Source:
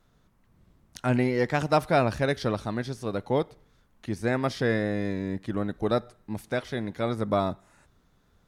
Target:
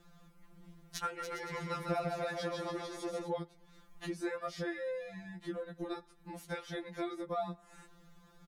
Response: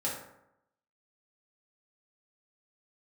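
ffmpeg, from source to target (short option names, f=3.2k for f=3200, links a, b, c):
-filter_complex "[0:a]acompressor=threshold=-39dB:ratio=6,asplit=3[a][b][c];[a]afade=t=out:st=1.19:d=0.02[d];[b]aecho=1:1:150|285|406.5|515.8|614.3:0.631|0.398|0.251|0.158|0.1,afade=t=in:st=1.19:d=0.02,afade=t=out:st=3.26:d=0.02[e];[c]afade=t=in:st=3.26:d=0.02[f];[d][e][f]amix=inputs=3:normalize=0,afftfilt=real='re*2.83*eq(mod(b,8),0)':imag='im*2.83*eq(mod(b,8),0)':win_size=2048:overlap=0.75,volume=6.5dB"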